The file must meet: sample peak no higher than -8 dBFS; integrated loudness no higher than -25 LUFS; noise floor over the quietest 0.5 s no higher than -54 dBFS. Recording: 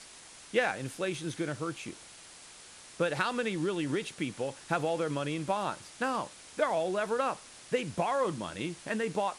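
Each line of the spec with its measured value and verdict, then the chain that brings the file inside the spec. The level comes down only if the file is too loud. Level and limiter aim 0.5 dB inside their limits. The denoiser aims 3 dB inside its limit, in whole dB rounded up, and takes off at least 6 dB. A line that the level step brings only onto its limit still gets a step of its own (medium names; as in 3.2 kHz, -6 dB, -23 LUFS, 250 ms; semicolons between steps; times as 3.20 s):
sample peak -15.5 dBFS: pass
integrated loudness -33.0 LUFS: pass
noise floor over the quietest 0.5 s -52 dBFS: fail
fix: noise reduction 6 dB, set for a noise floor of -52 dBFS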